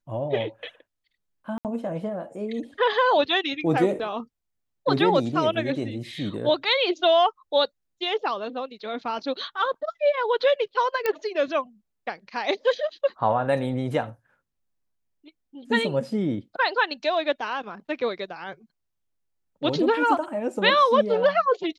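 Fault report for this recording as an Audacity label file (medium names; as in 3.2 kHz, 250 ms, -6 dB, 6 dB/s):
1.580000	1.650000	dropout 68 ms
11.060000	11.060000	pop -11 dBFS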